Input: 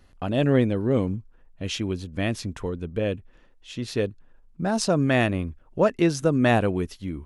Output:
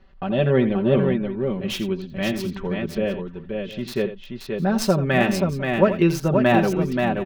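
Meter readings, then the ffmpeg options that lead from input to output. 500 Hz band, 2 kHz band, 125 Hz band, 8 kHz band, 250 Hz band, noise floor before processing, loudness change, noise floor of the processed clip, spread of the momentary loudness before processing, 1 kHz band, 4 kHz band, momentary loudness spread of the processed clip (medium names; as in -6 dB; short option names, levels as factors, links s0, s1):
+4.0 dB, +3.5 dB, +2.0 dB, -0.5 dB, +3.5 dB, -56 dBFS, +2.5 dB, -41 dBFS, 11 LU, +4.0 dB, +2.0 dB, 11 LU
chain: -filter_complex "[0:a]aecho=1:1:5.2:0.82,acrossover=split=4500[s0][s1];[s1]acrusher=bits=3:dc=4:mix=0:aa=0.000001[s2];[s0][s2]amix=inputs=2:normalize=0,aecho=1:1:83|529|707:0.251|0.596|0.126"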